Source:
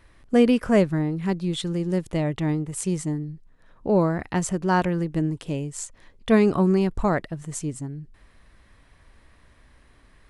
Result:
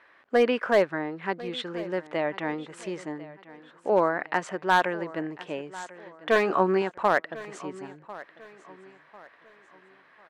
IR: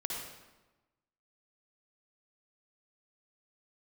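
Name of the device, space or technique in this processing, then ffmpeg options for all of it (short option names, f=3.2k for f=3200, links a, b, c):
megaphone: -filter_complex "[0:a]highpass=570,lowpass=2.6k,equalizer=f=1.6k:t=o:w=0.39:g=4,asoftclip=type=hard:threshold=-16.5dB,asettb=1/sr,asplit=3[a][b][c];[a]atrim=end=6.344[d];[b]atrim=start=6.34:end=6.82,asetpts=PTS-STARTPTS,afade=t=in:d=0.004:c=qsin,afade=t=out:st=0.476:d=0.004:c=qsin,asplit=2[e][f];[f]adelay=16,volume=-5dB[g];[e][g]amix=inputs=2:normalize=0,atrim=end_sample=21168[h];[c]atrim=start=6.816[i];[d][h]acrossfade=d=0.004:c1=hsin:c2=qsin[j];[j][i]acrossfade=d=0.004:c1=qsin:c2=hsin,aecho=1:1:1047|2094|3141:0.126|0.0453|0.0163,volume=4dB"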